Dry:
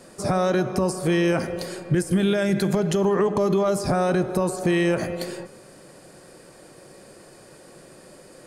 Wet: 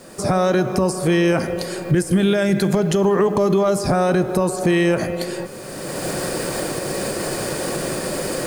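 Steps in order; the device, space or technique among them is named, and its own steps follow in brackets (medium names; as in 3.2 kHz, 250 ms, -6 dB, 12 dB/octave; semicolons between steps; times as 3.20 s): cheap recorder with automatic gain (white noise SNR 38 dB; recorder AGC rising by 22 dB/s); trim +4 dB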